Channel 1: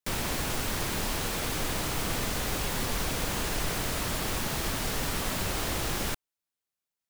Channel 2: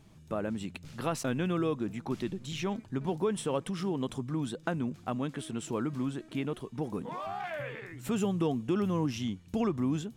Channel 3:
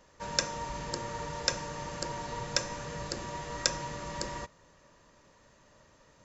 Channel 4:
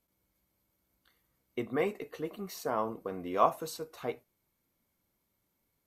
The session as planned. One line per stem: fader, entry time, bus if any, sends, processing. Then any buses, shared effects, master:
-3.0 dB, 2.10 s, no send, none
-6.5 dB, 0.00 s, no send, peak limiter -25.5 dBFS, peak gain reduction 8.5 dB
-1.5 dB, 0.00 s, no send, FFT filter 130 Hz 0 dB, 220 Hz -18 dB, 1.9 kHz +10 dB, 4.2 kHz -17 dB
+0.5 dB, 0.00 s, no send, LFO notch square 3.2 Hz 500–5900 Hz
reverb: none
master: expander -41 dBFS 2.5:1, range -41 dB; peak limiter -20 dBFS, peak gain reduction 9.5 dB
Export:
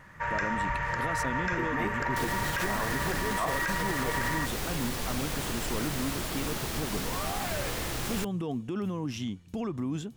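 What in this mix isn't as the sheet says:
stem 2 -6.5 dB -> +0.5 dB; stem 3 -1.5 dB -> +7.0 dB; master: missing expander -41 dBFS 2.5:1, range -41 dB

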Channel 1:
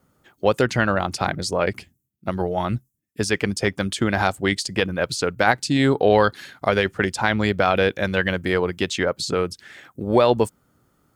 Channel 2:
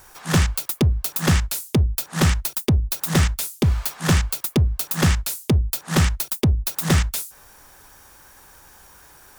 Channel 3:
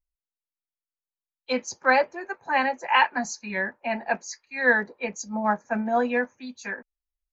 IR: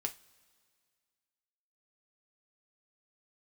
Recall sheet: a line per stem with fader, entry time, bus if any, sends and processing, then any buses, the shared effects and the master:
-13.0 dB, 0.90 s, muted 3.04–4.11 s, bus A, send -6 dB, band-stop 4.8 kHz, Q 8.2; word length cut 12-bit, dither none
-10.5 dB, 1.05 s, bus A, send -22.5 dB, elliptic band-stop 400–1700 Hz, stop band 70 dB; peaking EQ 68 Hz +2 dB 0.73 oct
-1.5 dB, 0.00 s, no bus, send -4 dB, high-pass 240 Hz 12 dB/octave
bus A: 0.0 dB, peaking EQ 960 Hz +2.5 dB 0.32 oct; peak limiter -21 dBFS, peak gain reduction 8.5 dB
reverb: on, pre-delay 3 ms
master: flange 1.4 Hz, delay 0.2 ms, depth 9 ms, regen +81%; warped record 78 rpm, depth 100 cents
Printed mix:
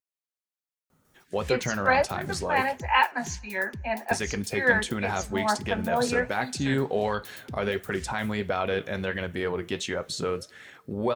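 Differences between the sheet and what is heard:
stem 1 -13.0 dB -> -3.0 dB; stem 2 -10.5 dB -> -17.5 dB; master: missing warped record 78 rpm, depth 100 cents

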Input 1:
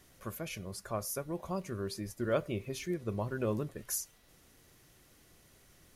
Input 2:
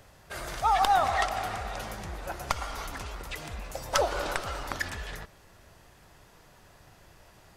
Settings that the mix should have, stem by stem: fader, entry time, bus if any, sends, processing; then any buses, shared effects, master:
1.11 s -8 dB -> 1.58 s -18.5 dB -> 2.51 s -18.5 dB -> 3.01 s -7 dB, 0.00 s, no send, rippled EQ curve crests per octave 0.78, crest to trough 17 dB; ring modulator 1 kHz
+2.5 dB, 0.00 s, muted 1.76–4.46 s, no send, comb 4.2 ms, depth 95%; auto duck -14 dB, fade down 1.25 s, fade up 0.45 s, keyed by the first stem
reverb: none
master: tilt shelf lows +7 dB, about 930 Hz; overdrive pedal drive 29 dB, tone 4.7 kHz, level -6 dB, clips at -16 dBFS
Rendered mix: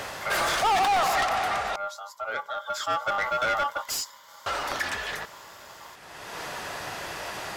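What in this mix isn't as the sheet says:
stem 2: missing comb 4.2 ms, depth 95%; master: missing tilt shelf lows +7 dB, about 930 Hz

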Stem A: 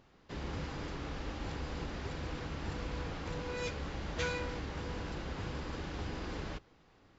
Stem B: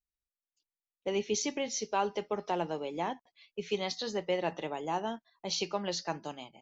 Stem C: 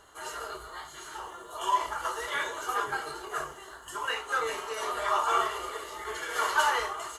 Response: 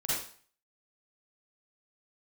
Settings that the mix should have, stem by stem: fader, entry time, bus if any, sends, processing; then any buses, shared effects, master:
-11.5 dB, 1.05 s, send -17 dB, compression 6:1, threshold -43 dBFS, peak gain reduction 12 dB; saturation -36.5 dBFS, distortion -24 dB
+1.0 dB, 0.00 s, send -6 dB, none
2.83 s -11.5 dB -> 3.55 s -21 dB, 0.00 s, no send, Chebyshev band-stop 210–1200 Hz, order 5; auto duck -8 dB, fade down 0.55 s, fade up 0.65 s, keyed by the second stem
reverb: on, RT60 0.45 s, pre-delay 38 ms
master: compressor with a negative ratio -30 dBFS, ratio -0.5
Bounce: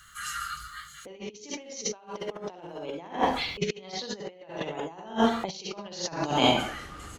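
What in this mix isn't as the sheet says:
stem B +1.0 dB -> +11.5 dB; stem C -11.5 dB -> -5.5 dB

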